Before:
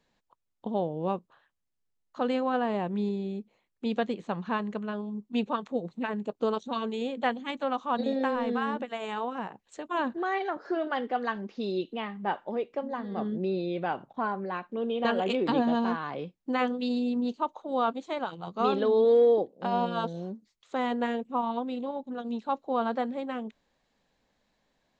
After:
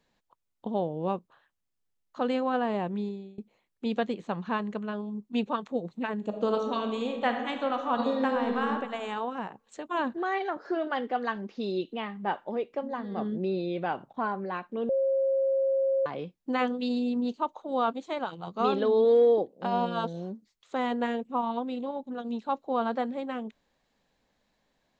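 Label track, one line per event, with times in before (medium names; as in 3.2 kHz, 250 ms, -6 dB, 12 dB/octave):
2.870000	3.380000	fade out, to -24 dB
6.150000	8.730000	reverb throw, RT60 1.3 s, DRR 4.5 dB
14.890000	16.060000	bleep 539 Hz -22.5 dBFS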